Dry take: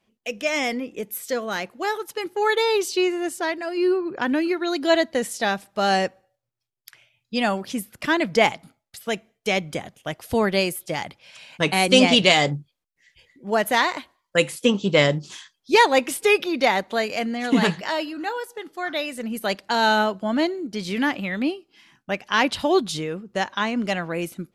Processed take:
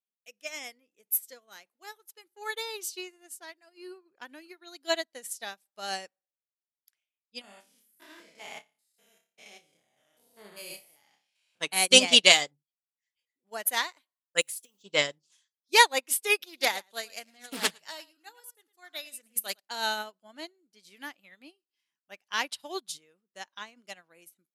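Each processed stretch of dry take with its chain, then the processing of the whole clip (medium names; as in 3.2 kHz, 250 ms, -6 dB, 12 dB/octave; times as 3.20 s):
7.41–11.61 s: spectrogram pixelated in time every 200 ms + flutter echo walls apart 5 m, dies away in 0.38 s
14.41–14.83 s: treble shelf 3.9 kHz +8 dB + compression 12:1, threshold -28 dBFS + companded quantiser 6-bit
16.42–19.60 s: treble shelf 4.8 kHz +8.5 dB + delay 109 ms -12 dB + loudspeaker Doppler distortion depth 0.32 ms
whole clip: RIAA curve recording; upward expansion 2.5:1, over -32 dBFS; trim -2 dB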